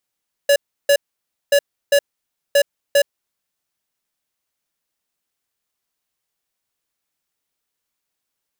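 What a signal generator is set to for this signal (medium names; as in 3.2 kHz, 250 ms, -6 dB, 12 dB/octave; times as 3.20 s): beep pattern square 568 Hz, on 0.07 s, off 0.33 s, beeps 2, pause 0.56 s, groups 3, -12.5 dBFS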